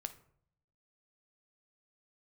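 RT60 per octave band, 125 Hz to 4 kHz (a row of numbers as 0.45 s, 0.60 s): 1.0 s, 0.90 s, 0.65 s, 0.60 s, 0.45 s, 0.35 s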